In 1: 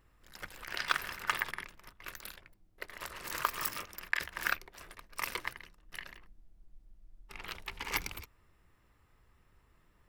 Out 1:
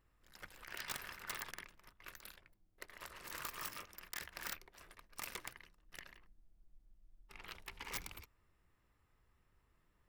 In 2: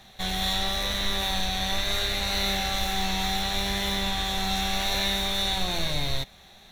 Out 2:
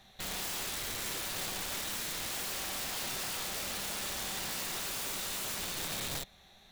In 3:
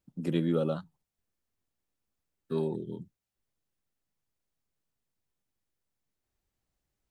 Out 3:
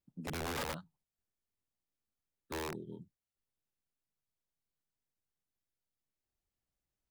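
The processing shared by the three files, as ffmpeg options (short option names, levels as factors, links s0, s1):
-af "aeval=exprs='(mod(16.8*val(0)+1,2)-1)/16.8':c=same,volume=0.398"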